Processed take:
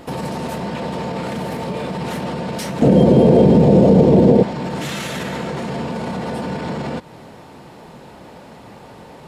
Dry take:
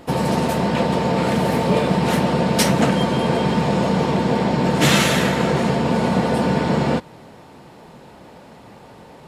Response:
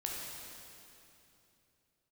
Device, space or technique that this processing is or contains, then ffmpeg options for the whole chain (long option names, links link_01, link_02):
loud club master: -filter_complex "[0:a]acompressor=threshold=-25dB:ratio=1.5,asoftclip=type=hard:threshold=-10dB,alimiter=level_in=19dB:limit=-1dB:release=50:level=0:latency=1,asettb=1/sr,asplit=3[link_01][link_02][link_03];[link_01]atrim=end=2.824[link_04];[link_02]atrim=start=2.82:end=4.43,asetpts=PTS-STARTPTS,afade=type=in:duration=0.004:curve=qsin,afade=type=out:start_time=1.606:duration=0.004:curve=qsin,lowshelf=frequency=770:width_type=q:width=1.5:gain=14[link_05];[link_03]atrim=start=4.426[link_06];[link_04][link_05]acrossfade=duration=0.004:curve1=hsin:curve2=qsin[link_07];[link_07][link_06]acrossfade=duration=0.004:curve1=qsin:curve2=hsin,volume=-16dB"